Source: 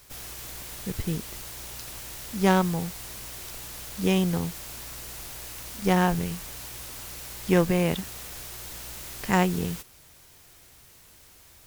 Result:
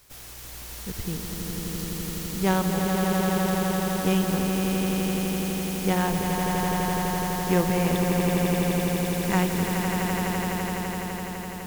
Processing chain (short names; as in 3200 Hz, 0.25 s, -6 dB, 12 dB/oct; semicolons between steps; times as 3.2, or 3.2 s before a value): swelling echo 84 ms, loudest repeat 8, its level -6 dB; gain -3 dB